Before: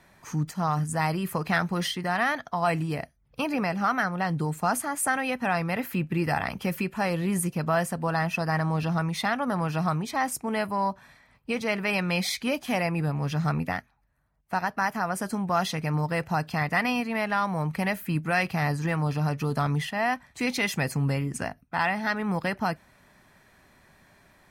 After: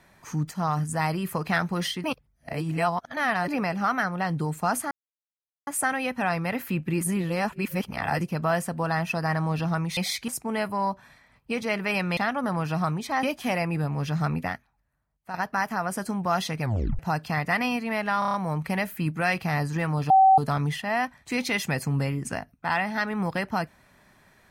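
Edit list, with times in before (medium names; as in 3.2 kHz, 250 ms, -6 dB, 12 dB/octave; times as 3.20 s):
2.04–3.48 s: reverse
4.91 s: insert silence 0.76 s
6.25–7.45 s: reverse
9.21–10.27 s: swap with 12.16–12.47 s
13.66–14.58 s: fade out linear, to -9.5 dB
15.86 s: tape stop 0.37 s
17.43 s: stutter 0.03 s, 6 plays
19.19–19.47 s: bleep 767 Hz -12.5 dBFS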